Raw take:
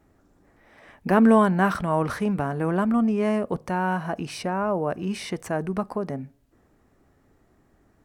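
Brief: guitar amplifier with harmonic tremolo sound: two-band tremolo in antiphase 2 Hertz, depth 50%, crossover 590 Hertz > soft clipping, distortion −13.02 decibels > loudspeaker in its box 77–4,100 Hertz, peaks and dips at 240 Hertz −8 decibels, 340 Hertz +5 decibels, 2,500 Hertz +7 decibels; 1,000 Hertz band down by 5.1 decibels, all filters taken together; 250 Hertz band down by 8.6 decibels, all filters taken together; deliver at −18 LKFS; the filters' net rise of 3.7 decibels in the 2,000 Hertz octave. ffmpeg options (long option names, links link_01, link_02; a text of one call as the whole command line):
ffmpeg -i in.wav -filter_complex "[0:a]equalizer=frequency=250:width_type=o:gain=-7.5,equalizer=frequency=1000:width_type=o:gain=-8,equalizer=frequency=2000:width_type=o:gain=7.5,acrossover=split=590[link_01][link_02];[link_01]aeval=exprs='val(0)*(1-0.5/2+0.5/2*cos(2*PI*2*n/s))':channel_layout=same[link_03];[link_02]aeval=exprs='val(0)*(1-0.5/2-0.5/2*cos(2*PI*2*n/s))':channel_layout=same[link_04];[link_03][link_04]amix=inputs=2:normalize=0,asoftclip=threshold=-23dB,highpass=77,equalizer=frequency=240:width_type=q:width=4:gain=-8,equalizer=frequency=340:width_type=q:width=4:gain=5,equalizer=frequency=2500:width_type=q:width=4:gain=7,lowpass=frequency=4100:width=0.5412,lowpass=frequency=4100:width=1.3066,volume=14.5dB" out.wav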